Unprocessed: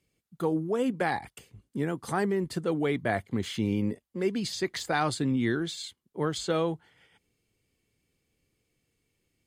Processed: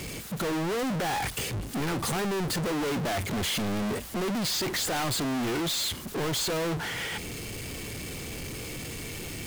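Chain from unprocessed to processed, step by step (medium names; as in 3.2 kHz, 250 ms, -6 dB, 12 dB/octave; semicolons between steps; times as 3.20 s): power-law waveshaper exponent 0.35; saturation -28 dBFS, distortion -9 dB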